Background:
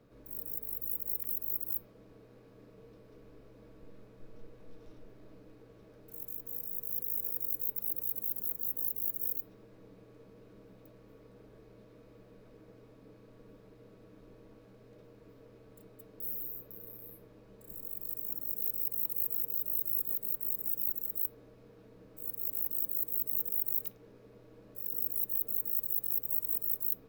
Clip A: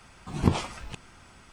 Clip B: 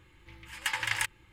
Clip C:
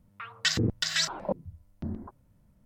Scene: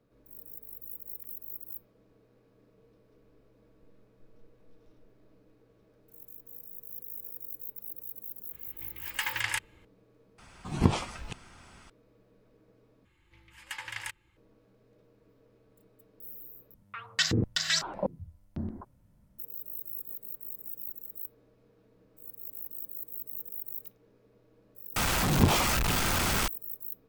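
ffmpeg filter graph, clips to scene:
-filter_complex "[2:a]asplit=2[s0][s1];[1:a]asplit=2[s2][s3];[0:a]volume=0.447[s4];[s3]aeval=exprs='val(0)+0.5*0.119*sgn(val(0))':c=same[s5];[s4]asplit=4[s6][s7][s8][s9];[s6]atrim=end=10.384[s10];[s2]atrim=end=1.52,asetpts=PTS-STARTPTS,volume=0.891[s11];[s7]atrim=start=11.896:end=13.054[s12];[s1]atrim=end=1.32,asetpts=PTS-STARTPTS,volume=0.376[s13];[s8]atrim=start=14.366:end=16.744[s14];[3:a]atrim=end=2.65,asetpts=PTS-STARTPTS,volume=0.944[s15];[s9]atrim=start=19.386[s16];[s0]atrim=end=1.32,asetpts=PTS-STARTPTS,volume=0.891,afade=t=in:d=0.004:c=hsin,afade=t=out:st=1.316:d=0.004:c=hsin,adelay=8530[s17];[s5]atrim=end=1.52,asetpts=PTS-STARTPTS,volume=0.668,afade=t=in:d=0.004:c=hsin,afade=t=out:st=1.516:d=0.004:c=hsin,adelay=24960[s18];[s10][s11]acrossfade=d=0.004:c1=hsin:c2=hsin[s19];[s19][s12]acrossfade=d=0.004:c1=hsin:c2=hsin[s20];[s20][s13]acrossfade=d=0.004:c1=hsin:c2=hsin[s21];[s21][s14]acrossfade=d=0.004:c1=hsin:c2=hsin[s22];[s22][s15]acrossfade=d=0.004:c1=hsin:c2=hsin[s23];[s23][s16]acrossfade=d=0.004:c1=hsin:c2=hsin[s24];[s24][s17][s18]amix=inputs=3:normalize=0"

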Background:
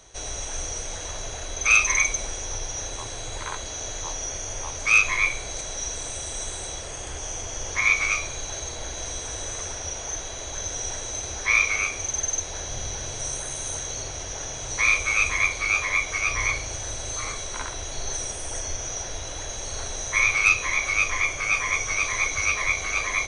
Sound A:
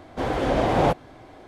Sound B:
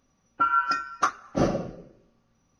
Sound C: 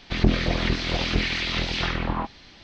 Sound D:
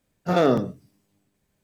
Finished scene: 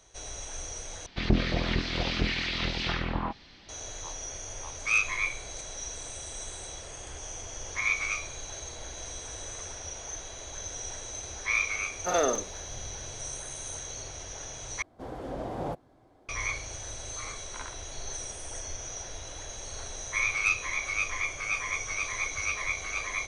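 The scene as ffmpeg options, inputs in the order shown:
-filter_complex "[0:a]volume=0.422[s0];[4:a]highpass=510[s1];[1:a]equalizer=f=2500:w=0.82:g=-8.5[s2];[s0]asplit=3[s3][s4][s5];[s3]atrim=end=1.064[s6];[3:a]atrim=end=2.63,asetpts=PTS-STARTPTS,volume=0.596[s7];[s4]atrim=start=3.686:end=14.824[s8];[s2]atrim=end=1.47,asetpts=PTS-STARTPTS,volume=0.211[s9];[s5]atrim=start=16.286[s10];[s1]atrim=end=1.63,asetpts=PTS-STARTPTS,volume=0.668,afade=t=in:d=0.004:c=hsin,afade=t=out:st=1.626:d=0.004:c=hsin,adelay=519498S[s11];[s6][s7]acrossfade=d=0.004:c1=hsin:c2=hsin[s12];[s12][s8]acrossfade=d=0.004:c1=hsin:c2=hsin[s13];[s13][s9]acrossfade=d=0.004:c1=hsin:c2=hsin[s14];[s14][s10]acrossfade=d=0.004:c1=hsin:c2=hsin[s15];[s15][s11]amix=inputs=2:normalize=0"

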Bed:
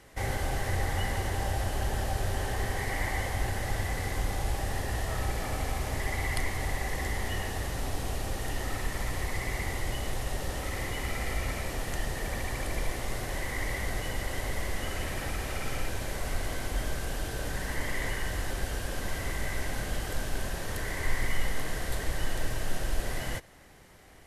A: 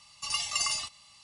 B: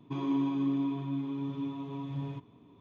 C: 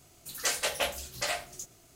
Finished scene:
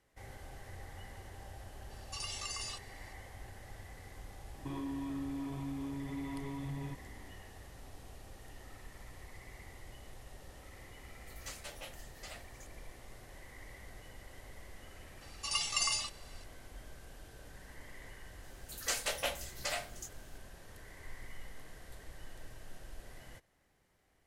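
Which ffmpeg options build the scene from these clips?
-filter_complex "[1:a]asplit=2[s0][s1];[3:a]asplit=2[s2][s3];[0:a]volume=0.112[s4];[s0]acompressor=threshold=0.0316:ratio=6:attack=3.2:release=140:knee=1:detection=peak[s5];[2:a]acompressor=threshold=0.0178:ratio=6:attack=3.2:release=140:knee=1:detection=peak[s6];[s2]asplit=2[s7][s8];[s8]adelay=7.7,afreqshift=2.5[s9];[s7][s9]amix=inputs=2:normalize=1[s10];[s5]atrim=end=1.23,asetpts=PTS-STARTPTS,volume=0.447,afade=t=in:d=0.004:c=hsin,afade=t=out:st=1.226:d=0.004:c=hsin,adelay=1900[s11];[s6]atrim=end=2.8,asetpts=PTS-STARTPTS,volume=0.794,afade=t=in:d=0.004:c=hsin,afade=t=out:st=2.796:d=0.004:c=hsin,adelay=4550[s12];[s10]atrim=end=1.95,asetpts=PTS-STARTPTS,volume=0.188,afade=t=in:d=0.004:c=hsin,afade=t=out:st=1.946:d=0.004:c=hsin,adelay=11010[s13];[s1]atrim=end=1.23,asetpts=PTS-STARTPTS,volume=0.708,afade=t=in:d=0.004:c=hsin,afade=t=out:st=1.226:d=0.004:c=hsin,adelay=15210[s14];[s3]atrim=end=1.95,asetpts=PTS-STARTPTS,volume=0.531,afade=t=in:d=0.004:c=hsin,afade=t=out:st=1.946:d=0.004:c=hsin,adelay=18430[s15];[s4][s11][s12][s13][s14][s15]amix=inputs=6:normalize=0"

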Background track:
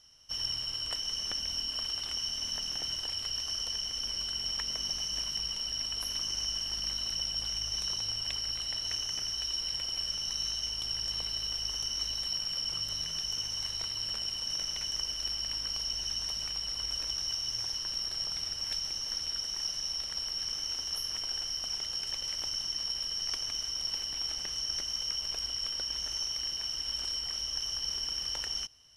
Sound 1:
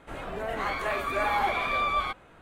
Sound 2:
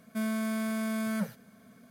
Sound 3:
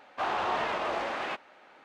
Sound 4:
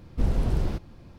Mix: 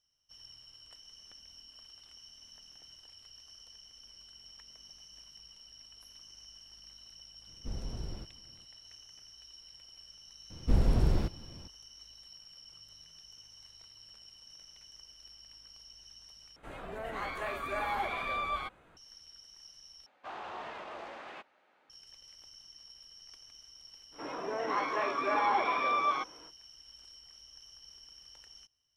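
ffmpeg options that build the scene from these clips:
-filter_complex "[4:a]asplit=2[s0][s1];[1:a]asplit=2[s2][s3];[0:a]volume=0.106[s4];[s3]highpass=f=150:w=0.5412,highpass=f=150:w=1.3066,equalizer=f=190:t=q:w=4:g=-7,equalizer=f=300:t=q:w=4:g=9,equalizer=f=460:t=q:w=4:g=6,equalizer=f=1000:t=q:w=4:g=9,equalizer=f=4700:t=q:w=4:g=-7,lowpass=f=5800:w=0.5412,lowpass=f=5800:w=1.3066[s5];[s4]asplit=3[s6][s7][s8];[s6]atrim=end=16.564[s9];[s2]atrim=end=2.41,asetpts=PTS-STARTPTS,volume=0.422[s10];[s7]atrim=start=18.966:end=20.064[s11];[3:a]atrim=end=1.84,asetpts=PTS-STARTPTS,volume=0.224[s12];[s8]atrim=start=21.896[s13];[s0]atrim=end=1.18,asetpts=PTS-STARTPTS,volume=0.178,afade=t=in:d=0.004:c=hsin,afade=t=out:st=1.176:d=0.004:c=hsin,adelay=7470[s14];[s1]atrim=end=1.18,asetpts=PTS-STARTPTS,volume=0.841,afade=t=in:d=0.004:c=hsin,afade=t=out:st=1.176:d=0.004:c=hsin,adelay=463050S[s15];[s5]atrim=end=2.41,asetpts=PTS-STARTPTS,volume=0.531,afade=t=in:d=0.05,afade=t=out:st=2.36:d=0.05,adelay=24110[s16];[s9][s10]acrossfade=d=0.004:c1=hsin:c2=hsin[s17];[s17][s11]acrossfade=d=0.004:c1=hsin:c2=hsin[s18];[s18][s12]acrossfade=d=0.004:c1=hsin:c2=hsin[s19];[s19][s13]acrossfade=d=0.004:c1=hsin:c2=hsin[s20];[s20][s14][s15][s16]amix=inputs=4:normalize=0"

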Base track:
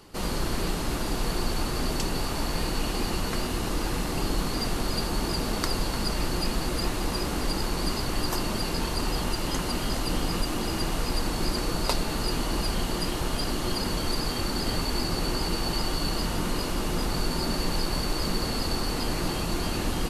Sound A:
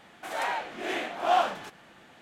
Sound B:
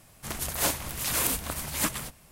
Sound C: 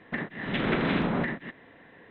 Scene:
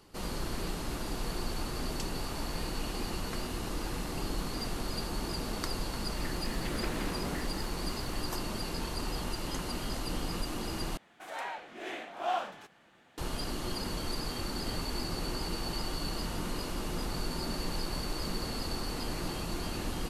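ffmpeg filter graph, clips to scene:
-filter_complex "[0:a]volume=0.422[s0];[3:a]aeval=exprs='val(0)+0.5*0.0112*sgn(val(0))':c=same[s1];[s0]asplit=2[s2][s3];[s2]atrim=end=10.974[s4];[1:a]atrim=end=2.21,asetpts=PTS-STARTPTS,volume=0.376[s5];[s3]atrim=start=13.176[s6];[s1]atrim=end=2.1,asetpts=PTS-STARTPTS,volume=0.224,afade=t=in:d=0.004:c=hsin,afade=t=out:st=2.096:d=0.004:c=hsin,adelay=6110[s7];[s4][s5]acrossfade=d=0.004:c1=hsin:c2=hsin[s8];[s8][s6]acrossfade=d=0.004:c1=hsin:c2=hsin[s9];[s9][s7]amix=inputs=2:normalize=0"

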